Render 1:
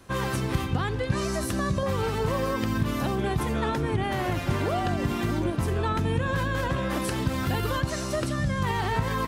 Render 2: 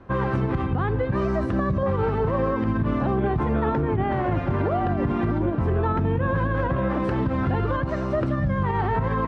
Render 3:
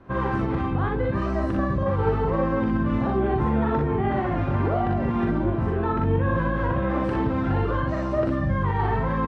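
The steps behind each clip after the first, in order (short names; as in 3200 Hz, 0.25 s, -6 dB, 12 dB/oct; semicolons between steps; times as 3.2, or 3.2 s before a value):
LPF 1400 Hz 12 dB/oct; limiter -20 dBFS, peak gain reduction 7 dB; gain +5.5 dB
early reflections 42 ms -3.5 dB, 60 ms -3.5 dB; gain -3 dB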